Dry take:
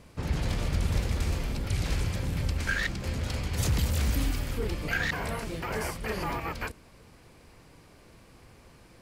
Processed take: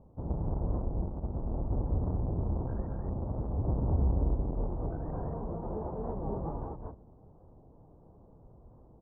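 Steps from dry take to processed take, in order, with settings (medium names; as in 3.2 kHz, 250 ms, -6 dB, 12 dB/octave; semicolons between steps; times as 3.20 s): square wave that keeps the level; steep low-pass 940 Hz 36 dB/octave; 0.82–1.56 s: compressor with a negative ratio -26 dBFS, ratio -0.5; loudspeakers at several distances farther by 67 m -9 dB, 78 m -2 dB; warped record 45 rpm, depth 100 cents; trim -9 dB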